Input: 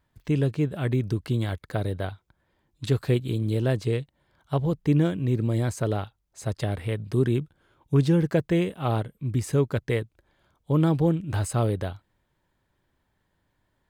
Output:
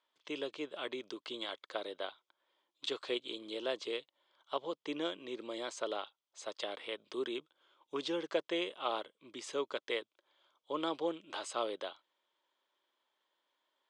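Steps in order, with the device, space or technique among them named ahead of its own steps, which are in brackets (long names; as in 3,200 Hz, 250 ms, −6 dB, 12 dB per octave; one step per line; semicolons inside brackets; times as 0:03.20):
phone speaker on a table (loudspeaker in its box 410–6,900 Hz, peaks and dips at 440 Hz −5 dB, 740 Hz −5 dB, 1,100 Hz +3 dB, 1,700 Hz −6 dB, 3,300 Hz +9 dB)
level −4.5 dB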